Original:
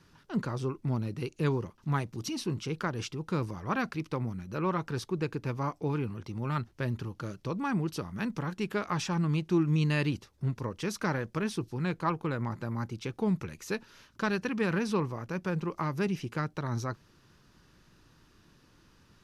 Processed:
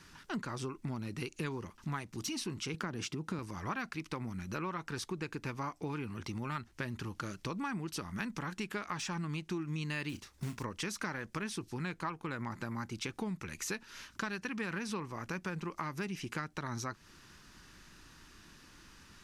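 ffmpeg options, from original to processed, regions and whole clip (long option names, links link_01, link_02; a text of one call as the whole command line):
ffmpeg -i in.wav -filter_complex "[0:a]asettb=1/sr,asplit=3[link_01][link_02][link_03];[link_01]atrim=end=2.744[link_04];[link_02]atrim=start=2.74:end=3.39,asetpts=PTS-STARTPTS,afade=type=in:duration=0.004:curve=qsin,afade=type=out:start_time=0.646:duration=0.004:curve=qsin,highpass=130,lowshelf=frequency=480:gain=10.5,acompressor=threshold=-27dB:ratio=2:attack=3.2:release=140:knee=1:detection=peak[link_05];[link_03]atrim=start=3.386[link_06];[link_04][link_05]acrossfade=duration=0.004:curve1=hsin:curve2=qsin[link_07];[link_07][link_06]acrossfade=duration=0.004:curve1=qsin:curve2=hsin,asettb=1/sr,asplit=3[link_08][link_09][link_10];[link_08]atrim=end=10.094[link_11];[link_09]atrim=start=10.09:end=10.63,asetpts=PTS-STARTPTS,afade=type=in:duration=0.004:curve=qsin,afade=type=out:start_time=0.536:duration=0.004:curve=qsin,acrusher=bits=6:mode=log:mix=0:aa=0.000001,asplit=2[link_12][link_13];[link_13]adelay=34,volume=-13dB[link_14];[link_12][link_14]amix=inputs=2:normalize=0,atrim=end_sample=23814[link_15];[link_10]atrim=start=10.626[link_16];[link_11][link_15]acrossfade=duration=0.004:curve1=hsin:curve2=qsin[link_17];[link_17][link_16]acrossfade=duration=0.004:curve1=qsin:curve2=hsin,deesser=0.85,equalizer=frequency=125:width_type=o:width=1:gain=-7,equalizer=frequency=500:width_type=o:width=1:gain=-6,equalizer=frequency=2000:width_type=o:width=1:gain=4,equalizer=frequency=8000:width_type=o:width=1:gain=6,acompressor=threshold=-41dB:ratio=5,volume=5dB" out.wav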